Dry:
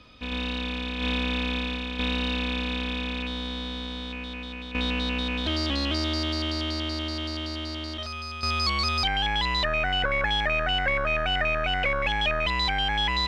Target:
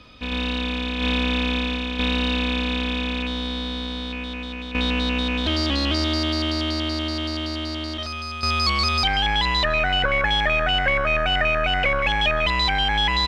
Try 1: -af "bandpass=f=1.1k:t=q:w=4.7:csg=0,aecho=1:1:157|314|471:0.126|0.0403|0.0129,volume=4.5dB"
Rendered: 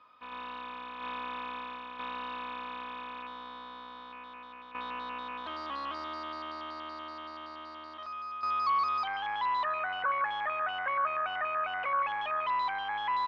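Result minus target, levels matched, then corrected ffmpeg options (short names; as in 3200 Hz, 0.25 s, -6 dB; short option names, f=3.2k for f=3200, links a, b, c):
1000 Hz band +7.5 dB
-af "aecho=1:1:157|314|471:0.126|0.0403|0.0129,volume=4.5dB"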